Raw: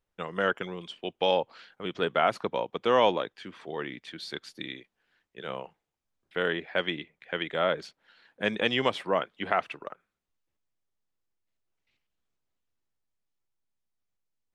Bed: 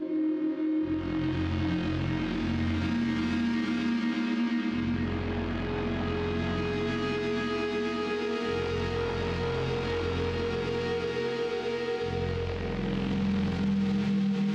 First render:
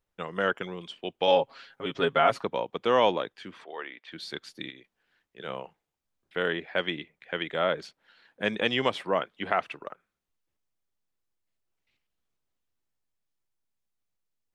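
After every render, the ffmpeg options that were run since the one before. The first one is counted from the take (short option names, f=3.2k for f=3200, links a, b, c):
-filter_complex "[0:a]asettb=1/sr,asplit=3[a][b][c];[a]atrim=end=1.274[d];[b]atrim=start=1.27:end=2.44,asetpts=PTS-STARTPTS,afade=t=in:d=0.004:c=qsin,afade=t=out:st=1.166:d=0.004:c=qsin,aecho=1:1:7.3:0.81,atrim=end_sample=51597[e];[c]atrim=start=2.436[f];[d][e]acrossfade=d=0.004:c1=hsin:c2=qsin[g];[g][f]acrossfade=d=0.004:c1=qsin:c2=hsin,asettb=1/sr,asplit=3[h][i][j];[h]atrim=end=3.644[k];[i]atrim=start=3.64:end=4.12,asetpts=PTS-STARTPTS,afade=t=in:d=0.004:c=qsin,afade=t=out:st=0.476:d=0.004:c=qsin,highpass=570,lowpass=3.2k[l];[j]atrim=start=4.116[m];[k][l]acrossfade=d=0.004:c1=hsin:c2=qsin[n];[n][m]acrossfade=d=0.004:c1=qsin:c2=hsin,asettb=1/sr,asplit=3[o][p][q];[o]atrim=end=4.704[r];[p]atrim=start=4.7:end=5.4,asetpts=PTS-STARTPTS,afade=t=in:d=0.004:c=qsin,afade=t=out:st=0.696:d=0.004:c=qsin,acompressor=threshold=-49dB:ratio=2:attack=3.2:release=140:knee=1:detection=peak[s];[q]atrim=start=5.396[t];[r][s]acrossfade=d=0.004:c1=hsin:c2=qsin[u];[u][t]acrossfade=d=0.004:c1=qsin:c2=hsin"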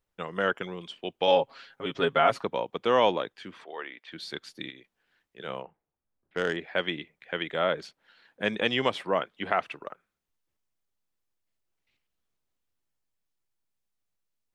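-filter_complex "[0:a]asettb=1/sr,asplit=3[a][b][c];[a]atrim=end=5.624[d];[b]atrim=start=5.62:end=6.57,asetpts=PTS-STARTPTS,afade=t=in:d=0.004:c=qsin,afade=t=out:st=0.946:d=0.004:c=qsin,adynamicsmooth=sensitivity=1.5:basefreq=1.7k[e];[c]atrim=start=6.566[f];[d][e]acrossfade=d=0.004:c1=hsin:c2=qsin[g];[g][f]acrossfade=d=0.004:c1=qsin:c2=hsin"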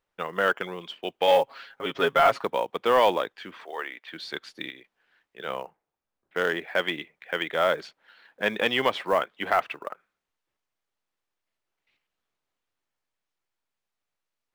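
-filter_complex "[0:a]asplit=2[a][b];[b]highpass=f=720:p=1,volume=12dB,asoftclip=type=tanh:threshold=-7.5dB[c];[a][c]amix=inputs=2:normalize=0,lowpass=f=2.3k:p=1,volume=-6dB,acrusher=bits=7:mode=log:mix=0:aa=0.000001"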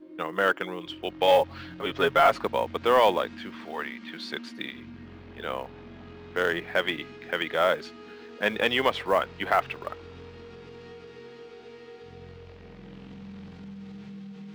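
-filter_complex "[1:a]volume=-15dB[a];[0:a][a]amix=inputs=2:normalize=0"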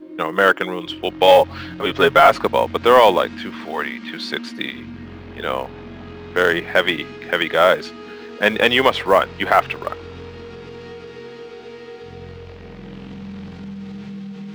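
-af "volume=9.5dB,alimiter=limit=-1dB:level=0:latency=1"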